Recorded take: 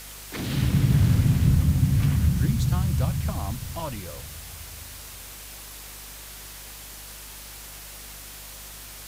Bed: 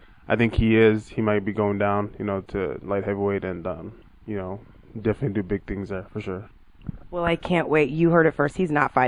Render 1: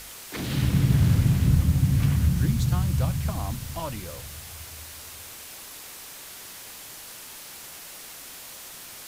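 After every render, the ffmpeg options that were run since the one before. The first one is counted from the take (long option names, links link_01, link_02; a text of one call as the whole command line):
ffmpeg -i in.wav -af "bandreject=frequency=50:width_type=h:width=4,bandreject=frequency=100:width_type=h:width=4,bandreject=frequency=150:width_type=h:width=4,bandreject=frequency=200:width_type=h:width=4,bandreject=frequency=250:width_type=h:width=4" out.wav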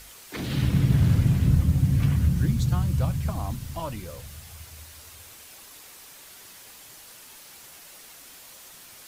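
ffmpeg -i in.wav -af "afftdn=noise_reduction=6:noise_floor=-42" out.wav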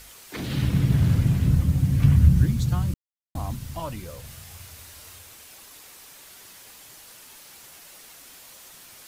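ffmpeg -i in.wav -filter_complex "[0:a]asettb=1/sr,asplit=3[link_01][link_02][link_03];[link_01]atrim=end=2.034[link_04];[link_02]atrim=start=2.03:end=2.44,asetpts=PTS-STARTPTS,afade=type=in:duration=0.004:curve=qsin,afade=type=out:start_time=0.406:duration=0.004:curve=qsin,lowshelf=frequency=190:gain=8[link_05];[link_03]atrim=start=2.436[link_06];[link_04][link_05]acrossfade=duration=0.004:curve1=hsin:curve2=qsin[link_07];[link_07][link_06]acrossfade=duration=0.004:curve1=qsin:curve2=hsin,asettb=1/sr,asplit=3[link_08][link_09][link_10];[link_08]atrim=end=4.214[link_11];[link_09]atrim=start=4.21:end=5.19,asetpts=PTS-STARTPTS,afade=type=in:duration=0.004:curve=qsin,afade=type=out:start_time=0.976:duration=0.004:curve=qsin,asplit=2[link_12][link_13];[link_13]adelay=33,volume=-4dB[link_14];[link_12][link_14]amix=inputs=2:normalize=0,atrim=end_sample=43218[link_15];[link_10]atrim=start=5.186[link_16];[link_11][link_15]acrossfade=duration=0.004:curve1=hsin:curve2=qsin[link_17];[link_17][link_16]acrossfade=duration=0.004:curve1=qsin:curve2=hsin,asplit=3[link_18][link_19][link_20];[link_18]atrim=end=2.94,asetpts=PTS-STARTPTS,afade=type=out:start_time=2.936:duration=0.004:curve=hsin[link_21];[link_19]atrim=start=2.94:end=3.35,asetpts=PTS-STARTPTS,volume=0[link_22];[link_20]atrim=start=3.35,asetpts=PTS-STARTPTS,afade=type=in:duration=0.004:curve=hsin[link_23];[link_21][link_22][link_23]concat=n=3:v=0:a=1" out.wav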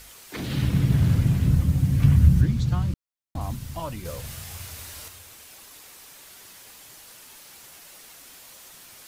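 ffmpeg -i in.wav -filter_complex "[0:a]asettb=1/sr,asplit=3[link_01][link_02][link_03];[link_01]atrim=end=2.414[link_04];[link_02]atrim=start=2.41:end=3.41,asetpts=PTS-STARTPTS,afade=type=in:duration=0.004:curve=qsin,afade=type=out:start_time=0.996:duration=0.004:curve=qsin,acrossover=split=6000[link_05][link_06];[link_06]acompressor=threshold=-56dB:ratio=4:attack=1:release=60[link_07];[link_05][link_07]amix=inputs=2:normalize=0[link_08];[link_03]atrim=start=3.406[link_09];[link_04][link_08]acrossfade=duration=0.004:curve1=hsin:curve2=qsin[link_10];[link_10][link_09]acrossfade=duration=0.004:curve1=qsin:curve2=hsin,asplit=3[link_11][link_12][link_13];[link_11]atrim=end=4.052[link_14];[link_12]atrim=start=4.048:end=5.082,asetpts=PTS-STARTPTS,volume=5dB[link_15];[link_13]atrim=start=5.078[link_16];[link_14][link_15]acrossfade=duration=0.004:curve1=hsin:curve2=hsin[link_17];[link_17][link_16]acrossfade=duration=0.004:curve1=hsin:curve2=hsin" out.wav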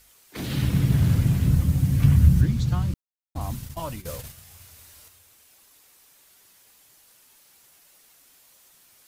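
ffmpeg -i in.wav -af "agate=range=-12dB:threshold=-34dB:ratio=16:detection=peak,highshelf=frequency=8000:gain=5" out.wav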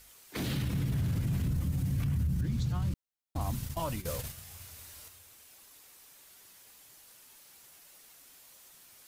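ffmpeg -i in.wav -af "acompressor=threshold=-29dB:ratio=2,alimiter=level_in=0.5dB:limit=-24dB:level=0:latency=1:release=16,volume=-0.5dB" out.wav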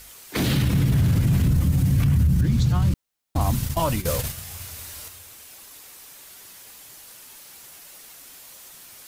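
ffmpeg -i in.wav -af "volume=11.5dB" out.wav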